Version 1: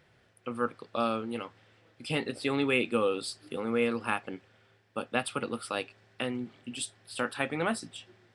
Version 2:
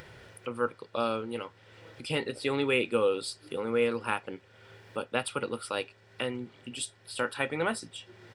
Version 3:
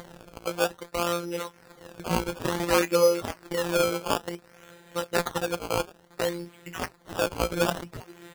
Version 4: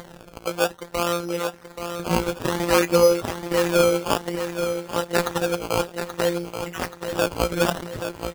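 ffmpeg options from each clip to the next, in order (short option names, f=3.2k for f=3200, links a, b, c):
-af "aecho=1:1:2.1:0.33,acompressor=mode=upward:threshold=-38dB:ratio=2.5"
-af "afftfilt=real='hypot(re,im)*cos(PI*b)':imag='0':win_size=1024:overlap=0.75,acrusher=samples=16:mix=1:aa=0.000001:lfo=1:lforange=16:lforate=0.57,volume=8dB"
-af "aecho=1:1:830|1660|2490|3320|4150:0.376|0.18|0.0866|0.0416|0.02,volume=3.5dB"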